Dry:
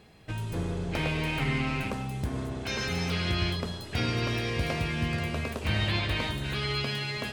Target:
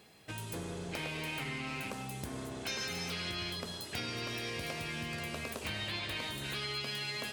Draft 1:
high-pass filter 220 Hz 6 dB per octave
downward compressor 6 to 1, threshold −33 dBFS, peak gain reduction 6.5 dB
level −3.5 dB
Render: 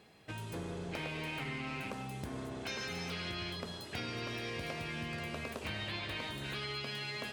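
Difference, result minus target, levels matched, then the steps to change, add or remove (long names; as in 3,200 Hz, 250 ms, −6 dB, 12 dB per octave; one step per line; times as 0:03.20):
8,000 Hz band −5.0 dB
add after downward compressor: high-shelf EQ 5,100 Hz +10.5 dB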